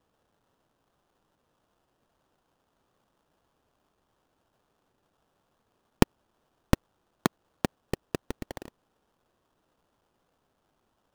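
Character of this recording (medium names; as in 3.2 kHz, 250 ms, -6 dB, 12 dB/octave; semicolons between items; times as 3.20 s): aliases and images of a low sample rate 2.2 kHz, jitter 20%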